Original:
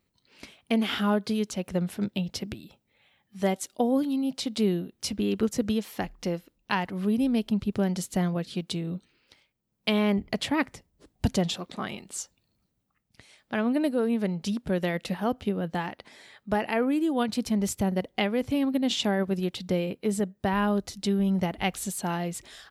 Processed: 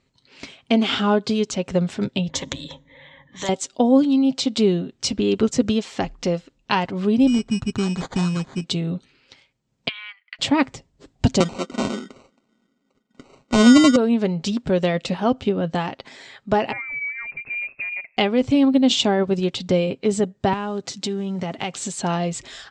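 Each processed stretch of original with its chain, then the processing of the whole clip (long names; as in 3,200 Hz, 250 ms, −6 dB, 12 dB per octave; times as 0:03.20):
0:02.30–0:03.49: low-pass that shuts in the quiet parts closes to 1,800 Hz, open at −34.5 dBFS + EQ curve with evenly spaced ripples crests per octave 1.1, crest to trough 17 dB + every bin compressed towards the loudest bin 2 to 1
0:07.27–0:08.64: phaser with its sweep stopped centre 1,500 Hz, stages 4 + sample-rate reduction 2,700 Hz
0:09.88–0:10.39: Butterworth high-pass 1,500 Hz + high-frequency loss of the air 480 metres
0:11.40–0:13.96: Chebyshev band-pass filter 210–2,300 Hz, order 4 + low-shelf EQ 360 Hz +11 dB + sample-rate reduction 1,700 Hz
0:16.72–0:18.17: downward compressor 3 to 1, threshold −36 dBFS + high-frequency loss of the air 260 metres + voice inversion scrambler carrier 2,600 Hz
0:20.53–0:21.99: one scale factor per block 7 bits + high-pass filter 120 Hz 24 dB per octave + downward compressor 3 to 1, threshold −30 dBFS
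whole clip: elliptic low-pass filter 7,700 Hz, stop band 60 dB; comb filter 7.5 ms, depth 34%; dynamic equaliser 1,800 Hz, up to −6 dB, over −49 dBFS, Q 2.4; level +8.5 dB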